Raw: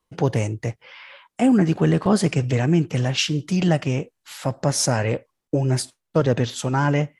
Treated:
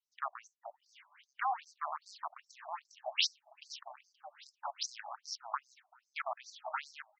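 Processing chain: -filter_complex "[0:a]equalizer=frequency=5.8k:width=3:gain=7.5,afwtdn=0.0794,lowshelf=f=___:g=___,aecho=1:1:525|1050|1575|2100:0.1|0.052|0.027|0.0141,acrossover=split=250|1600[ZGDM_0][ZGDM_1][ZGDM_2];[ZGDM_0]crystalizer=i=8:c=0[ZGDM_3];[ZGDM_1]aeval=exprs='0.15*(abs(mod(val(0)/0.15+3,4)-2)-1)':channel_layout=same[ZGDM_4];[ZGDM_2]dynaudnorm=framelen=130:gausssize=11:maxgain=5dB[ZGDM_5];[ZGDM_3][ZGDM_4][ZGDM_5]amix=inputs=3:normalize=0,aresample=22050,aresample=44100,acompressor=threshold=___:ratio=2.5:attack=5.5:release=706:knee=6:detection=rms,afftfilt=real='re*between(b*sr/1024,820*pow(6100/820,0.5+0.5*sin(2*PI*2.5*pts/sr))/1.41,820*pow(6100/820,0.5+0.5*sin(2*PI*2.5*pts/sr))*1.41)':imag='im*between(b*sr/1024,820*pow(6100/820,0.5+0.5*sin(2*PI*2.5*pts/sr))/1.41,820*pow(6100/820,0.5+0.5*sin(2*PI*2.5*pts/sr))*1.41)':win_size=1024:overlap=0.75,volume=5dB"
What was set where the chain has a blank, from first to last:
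390, 9, -27dB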